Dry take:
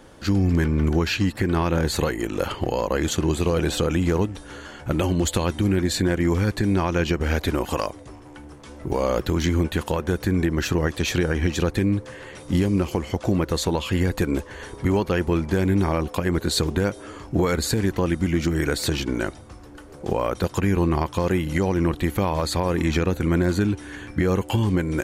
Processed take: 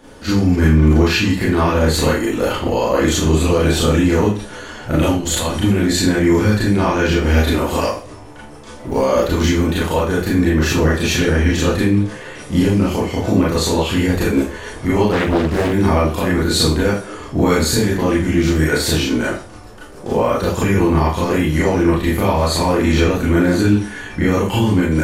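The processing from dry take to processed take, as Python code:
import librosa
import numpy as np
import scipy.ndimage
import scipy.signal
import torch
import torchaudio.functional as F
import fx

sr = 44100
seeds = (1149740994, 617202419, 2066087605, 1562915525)

y = fx.over_compress(x, sr, threshold_db=-25.0, ratio=-0.5, at=(5.11, 5.61))
y = fx.rev_schroeder(y, sr, rt60_s=0.37, comb_ms=26, drr_db=-7.0)
y = fx.doppler_dist(y, sr, depth_ms=0.87, at=(15.12, 15.73))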